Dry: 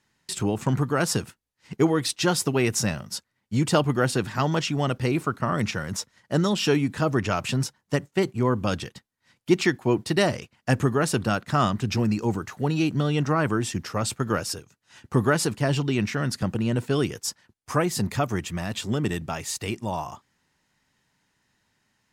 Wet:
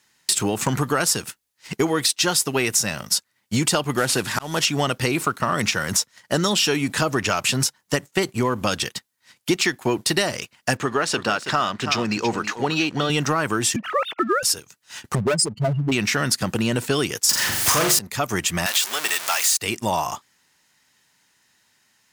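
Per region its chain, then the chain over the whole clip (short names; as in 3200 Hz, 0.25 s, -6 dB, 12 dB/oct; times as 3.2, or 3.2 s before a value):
3.97–4.65 CVSD 64 kbps + auto swell 0.385 s
10.77–13.1 LPF 4800 Hz + low shelf 180 Hz -11.5 dB + echo 0.327 s -13 dB
13.76–14.43 sine-wave speech + high shelf 2500 Hz -5 dB
15.15–15.92 spectral contrast raised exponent 3.5 + hard clip -20.5 dBFS
17.29–17.99 power-law curve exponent 0.35 + flutter echo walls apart 7.2 m, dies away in 0.47 s
18.66–19.57 zero-crossing step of -27.5 dBFS + HPF 890 Hz
whole clip: tilt +2.5 dB/oct; compressor, threshold -28 dBFS; sample leveller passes 1; gain +7 dB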